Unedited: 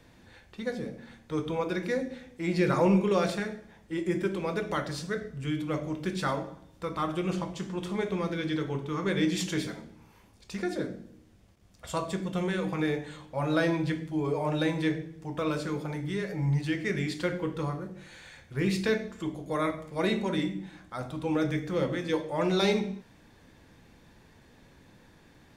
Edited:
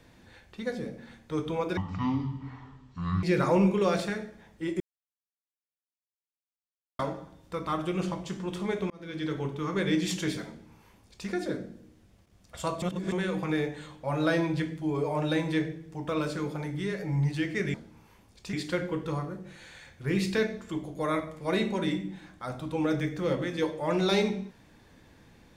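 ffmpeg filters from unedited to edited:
-filter_complex "[0:a]asplit=10[a][b][c][d][e][f][g][h][i][j];[a]atrim=end=1.774[k];[b]atrim=start=1.77:end=2.53,asetpts=PTS-STARTPTS,asetrate=22932,aresample=44100[l];[c]atrim=start=2.526:end=4.1,asetpts=PTS-STARTPTS,afade=t=out:st=1.57:d=0.004:c=hsin[m];[d]atrim=start=4.1:end=6.29,asetpts=PTS-STARTPTS,volume=0[n];[e]atrim=start=6.29:end=8.2,asetpts=PTS-STARTPTS,afade=t=in:d=0.004:c=hsin,afade=t=out:st=1.906:d=0.004:c=hsin[o];[f]atrim=start=8.2:end=12.122,asetpts=PTS-STARTPTS,afade=t=in:d=0.44[p];[g]atrim=start=12.118:end=12.422,asetpts=PTS-STARTPTS,areverse[q];[h]atrim=start=12.418:end=17.042[r];[i]atrim=start=9.788:end=10.582[s];[j]atrim=start=17.038[t];[k][l]acrossfade=d=0.004:c1=hsin:c2=hsin[u];[m][n][o][p]concat=n=4:v=0:a=1[v];[u][v]acrossfade=d=0.004:c1=hsin:c2=hsin[w];[w][q]acrossfade=d=0.004:c1=hsin:c2=hsin[x];[x][r]acrossfade=d=0.004:c1=hsin:c2=hsin[y];[y][s]acrossfade=d=0.004:c1=hsin:c2=hsin[z];[z][t]acrossfade=d=0.004:c1=hsin:c2=hsin"

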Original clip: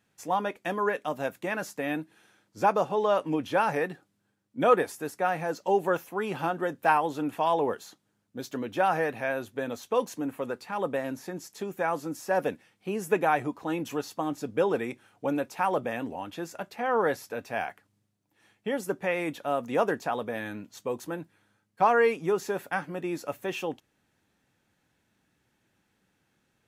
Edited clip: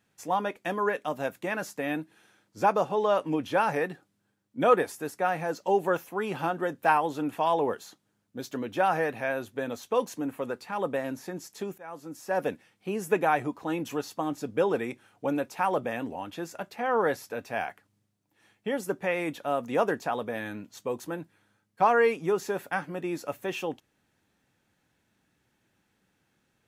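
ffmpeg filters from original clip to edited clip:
-filter_complex "[0:a]asplit=2[a][b];[a]atrim=end=11.78,asetpts=PTS-STARTPTS,afade=t=out:st=11.776:d=0.004:c=hsin:silence=0.0794328[c];[b]atrim=start=11.78,asetpts=PTS-STARTPTS,afade=t=in:d=0.73:silence=0.0794328[d];[c][d]concat=n=2:v=0:a=1"

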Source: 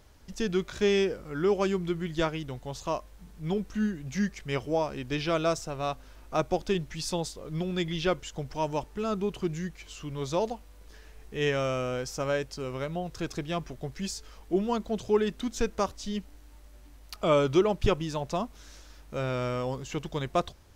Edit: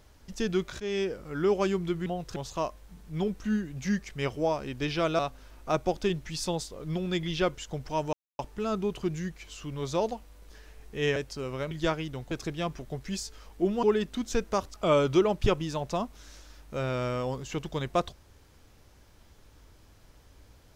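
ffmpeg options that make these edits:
-filter_complex "[0:a]asplit=11[a][b][c][d][e][f][g][h][i][j][k];[a]atrim=end=0.8,asetpts=PTS-STARTPTS,afade=t=out:st=0.796:d=0.004:c=hsin:silence=0.188365[l];[b]atrim=start=0.8:end=2.062,asetpts=PTS-STARTPTS,afade=t=in:d=0.57:c=qsin:silence=0.188365[m];[c]atrim=start=12.918:end=13.222[n];[d]atrim=start=2.658:end=5.492[o];[e]atrim=start=5.838:end=8.78,asetpts=PTS-STARTPTS,afade=t=out:st=2.938:d=0.004:c=hsin,apad=pad_dur=0.26[p];[f]atrim=start=8.78:end=11.552,asetpts=PTS-STARTPTS,afade=t=in:d=0.004:c=hsin[q];[g]atrim=start=12.368:end=12.922[r];[h]atrim=start=2.058:end=2.662[s];[i]atrim=start=13.218:end=14.742[t];[j]atrim=start=15.088:end=16.002[u];[k]atrim=start=17.138[v];[l][m]concat=n=2:v=0:a=1[w];[w][n]acrossfade=d=0.004:c1=hsin:c2=hsin[x];[x][o]acrossfade=d=0.004:c1=hsin:c2=hsin[y];[p][q]concat=n=2:v=0:a=1[z];[y][z]acrossfade=d=0.004:c1=hsin:c2=hsin[aa];[aa][r]acrossfade=d=0.004:c1=hsin:c2=hsin[ab];[ab][s]acrossfade=d=0.004:c1=hsin:c2=hsin[ac];[ac][t]acrossfade=d=0.004:c1=hsin:c2=hsin[ad];[ad][u]acrossfade=d=0.004:c1=hsin:c2=hsin[ae];[ae][v]acrossfade=d=0.004:c1=hsin:c2=hsin"

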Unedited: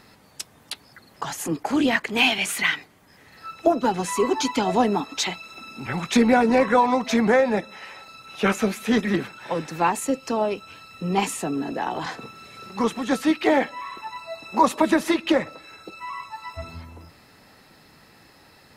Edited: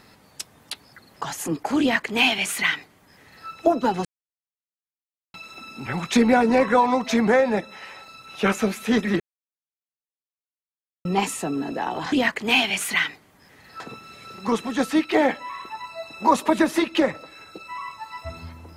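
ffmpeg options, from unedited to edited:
-filter_complex "[0:a]asplit=7[a][b][c][d][e][f][g];[a]atrim=end=4.05,asetpts=PTS-STARTPTS,afade=t=out:st=4.046:d=0.004:c=hsin[h];[b]atrim=start=4.05:end=5.34,asetpts=PTS-STARTPTS,volume=0[i];[c]atrim=start=5.34:end=9.2,asetpts=PTS-STARTPTS,afade=t=in:d=0.004:c=hsin,afade=t=out:st=3.856:d=0.004:c=hsin[j];[d]atrim=start=9.2:end=11.05,asetpts=PTS-STARTPTS,volume=0[k];[e]atrim=start=11.05:end=12.122,asetpts=PTS-STARTPTS,afade=t=in:d=0.004:c=hsin[l];[f]atrim=start=1.798:end=3.482[m];[g]atrim=start=12.118[n];[h][i][j][k][l]concat=n=5:v=0:a=1[o];[o][m]acrossfade=d=0.004:c1=hsin:c2=hsin[p];[p][n]acrossfade=d=0.004:c1=hsin:c2=hsin"

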